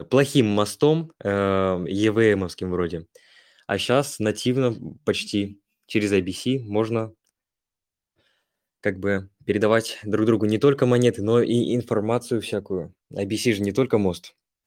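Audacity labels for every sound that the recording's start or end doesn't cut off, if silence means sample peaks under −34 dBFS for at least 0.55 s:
3.690000	7.080000	sound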